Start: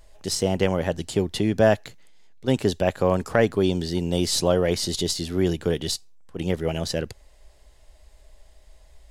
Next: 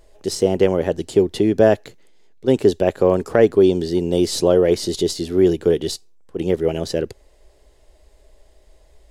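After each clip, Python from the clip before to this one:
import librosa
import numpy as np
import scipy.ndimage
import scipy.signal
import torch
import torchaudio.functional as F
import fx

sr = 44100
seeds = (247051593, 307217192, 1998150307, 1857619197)

y = fx.peak_eq(x, sr, hz=390.0, db=11.0, octaves=1.1)
y = F.gain(torch.from_numpy(y), -1.0).numpy()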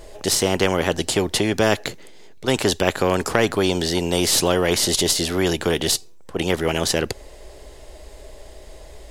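y = fx.spectral_comp(x, sr, ratio=2.0)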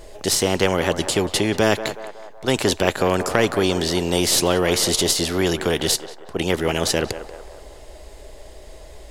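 y = fx.echo_banded(x, sr, ms=185, feedback_pct=61, hz=830.0, wet_db=-9.5)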